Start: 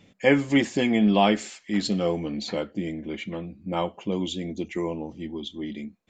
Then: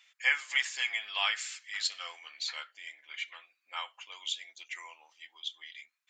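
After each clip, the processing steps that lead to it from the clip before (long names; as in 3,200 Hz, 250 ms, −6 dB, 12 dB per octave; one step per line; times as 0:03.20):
high-pass filter 1,300 Hz 24 dB per octave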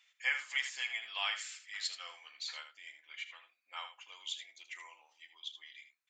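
ambience of single reflections 37 ms −17.5 dB, 79 ms −10.5 dB
level −6 dB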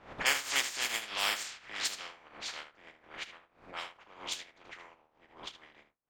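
compressing power law on the bin magnitudes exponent 0.29
low-pass that shuts in the quiet parts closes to 750 Hz, open at −35 dBFS
background raised ahead of every attack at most 130 dB per second
level +4.5 dB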